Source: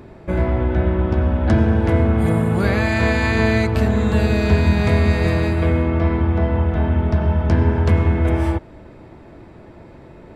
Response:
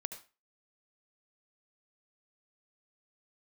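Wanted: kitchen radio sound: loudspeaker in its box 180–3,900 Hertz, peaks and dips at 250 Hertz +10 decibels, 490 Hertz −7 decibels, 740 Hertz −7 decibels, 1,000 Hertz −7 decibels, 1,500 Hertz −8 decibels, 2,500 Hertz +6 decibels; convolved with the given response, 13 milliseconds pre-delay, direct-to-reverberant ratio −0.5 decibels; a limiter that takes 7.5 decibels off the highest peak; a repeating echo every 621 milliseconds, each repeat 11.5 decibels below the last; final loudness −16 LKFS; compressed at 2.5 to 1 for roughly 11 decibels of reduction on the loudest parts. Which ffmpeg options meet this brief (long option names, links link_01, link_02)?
-filter_complex "[0:a]acompressor=threshold=-28dB:ratio=2.5,alimiter=limit=-22dB:level=0:latency=1,aecho=1:1:621|1242|1863:0.266|0.0718|0.0194,asplit=2[link_01][link_02];[1:a]atrim=start_sample=2205,adelay=13[link_03];[link_02][link_03]afir=irnorm=-1:irlink=0,volume=2dB[link_04];[link_01][link_04]amix=inputs=2:normalize=0,highpass=180,equalizer=frequency=250:width_type=q:width=4:gain=10,equalizer=frequency=490:width_type=q:width=4:gain=-7,equalizer=frequency=740:width_type=q:width=4:gain=-7,equalizer=frequency=1000:width_type=q:width=4:gain=-7,equalizer=frequency=1500:width_type=q:width=4:gain=-8,equalizer=frequency=2500:width_type=q:width=4:gain=6,lowpass=frequency=3900:width=0.5412,lowpass=frequency=3900:width=1.3066,volume=13.5dB"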